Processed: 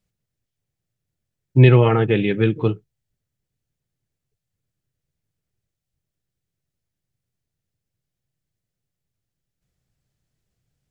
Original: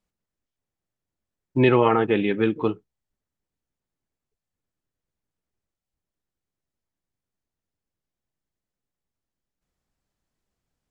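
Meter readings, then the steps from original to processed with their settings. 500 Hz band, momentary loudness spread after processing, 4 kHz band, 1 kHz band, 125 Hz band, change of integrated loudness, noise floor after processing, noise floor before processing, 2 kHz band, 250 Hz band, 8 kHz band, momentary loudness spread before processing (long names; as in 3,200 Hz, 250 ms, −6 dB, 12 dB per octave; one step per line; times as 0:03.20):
+2.0 dB, 12 LU, +3.5 dB, −2.5 dB, +13.5 dB, +4.5 dB, −83 dBFS, below −85 dBFS, +2.5 dB, +2.0 dB, can't be measured, 11 LU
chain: graphic EQ with 10 bands 125 Hz +11 dB, 250 Hz −5 dB, 1,000 Hz −8 dB
level +4 dB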